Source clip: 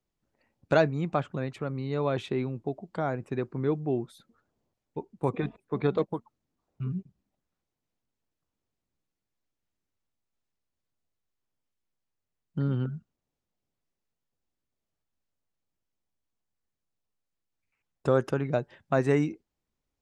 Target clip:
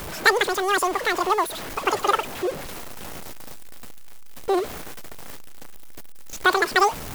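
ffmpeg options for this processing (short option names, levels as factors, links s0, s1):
-af "aeval=exprs='val(0)+0.5*0.0224*sgn(val(0))':c=same,highshelf=f=6900:g=7.5,asetrate=123480,aresample=44100,volume=2"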